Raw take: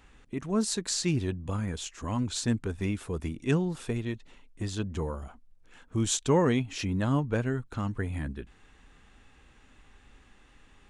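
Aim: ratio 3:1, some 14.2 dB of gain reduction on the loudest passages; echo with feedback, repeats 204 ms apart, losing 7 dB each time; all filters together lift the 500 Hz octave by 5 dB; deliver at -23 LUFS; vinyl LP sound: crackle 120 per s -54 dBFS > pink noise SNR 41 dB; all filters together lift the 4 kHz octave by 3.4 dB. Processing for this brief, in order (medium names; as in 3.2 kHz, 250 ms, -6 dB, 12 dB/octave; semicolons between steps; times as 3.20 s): peaking EQ 500 Hz +6 dB; peaking EQ 4 kHz +4 dB; compression 3:1, threshold -35 dBFS; feedback delay 204 ms, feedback 45%, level -7 dB; crackle 120 per s -54 dBFS; pink noise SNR 41 dB; trim +13.5 dB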